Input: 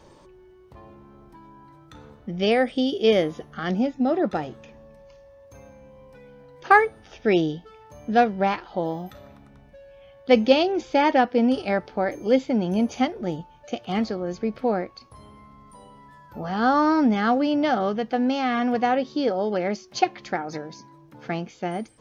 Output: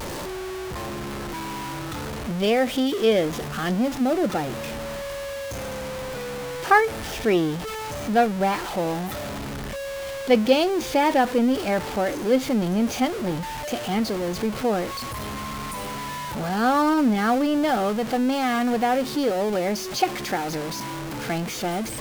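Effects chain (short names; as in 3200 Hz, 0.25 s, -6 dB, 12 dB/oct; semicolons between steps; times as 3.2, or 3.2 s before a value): zero-crossing step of -24.5 dBFS; vibrato 0.46 Hz 20 cents; gain -2 dB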